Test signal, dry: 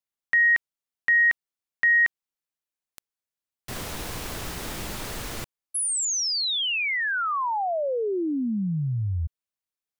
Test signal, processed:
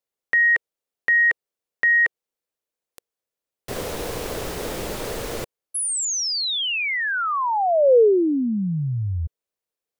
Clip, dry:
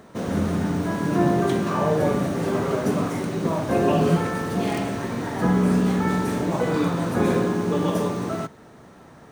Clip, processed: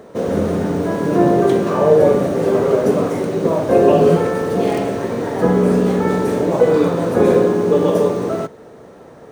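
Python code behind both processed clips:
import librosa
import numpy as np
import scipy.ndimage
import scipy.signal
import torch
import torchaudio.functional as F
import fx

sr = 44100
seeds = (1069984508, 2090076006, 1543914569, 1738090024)

y = fx.peak_eq(x, sr, hz=480.0, db=12.0, octaves=0.95)
y = y * librosa.db_to_amplitude(1.5)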